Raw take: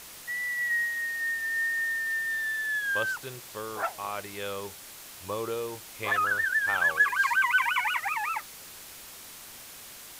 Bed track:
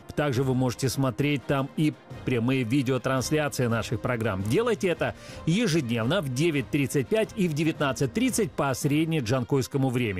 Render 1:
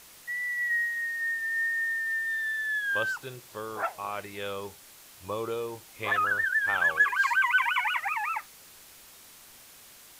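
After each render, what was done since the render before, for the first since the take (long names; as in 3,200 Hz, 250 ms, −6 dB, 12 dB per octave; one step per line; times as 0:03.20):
noise reduction from a noise print 6 dB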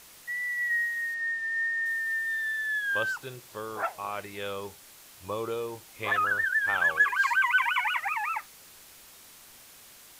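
0:01.14–0:01.86: high-frequency loss of the air 57 metres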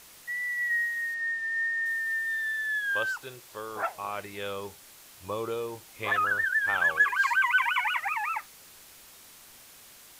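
0:02.93–0:03.76: parametric band 150 Hz −6.5 dB 2 octaves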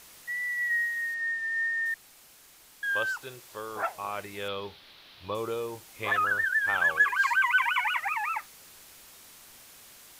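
0:01.94–0:02.83: fill with room tone
0:04.48–0:05.35: high shelf with overshoot 5,400 Hz −12.5 dB, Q 3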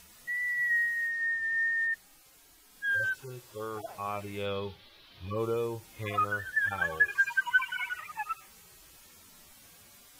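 harmonic-percussive split with one part muted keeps harmonic
low-shelf EQ 240 Hz +9 dB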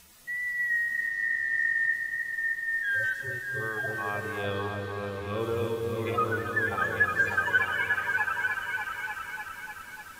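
echo whose low-pass opens from repeat to repeat 298 ms, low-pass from 400 Hz, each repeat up 2 octaves, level 0 dB
reverb whose tail is shaped and stops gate 360 ms rising, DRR 8.5 dB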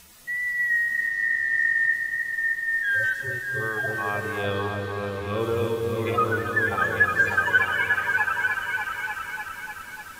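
level +4.5 dB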